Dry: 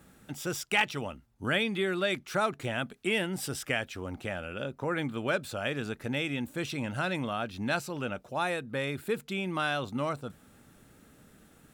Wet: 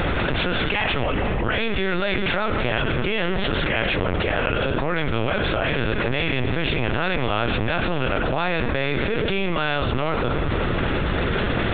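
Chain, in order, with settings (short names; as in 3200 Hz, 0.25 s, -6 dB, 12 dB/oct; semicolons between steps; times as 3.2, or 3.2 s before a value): per-bin compression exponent 0.6; de-hum 93.65 Hz, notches 31; on a send at -12.5 dB: reverb RT60 3.5 s, pre-delay 49 ms; on the sum: LPC vocoder at 8 kHz pitch kept; fast leveller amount 100%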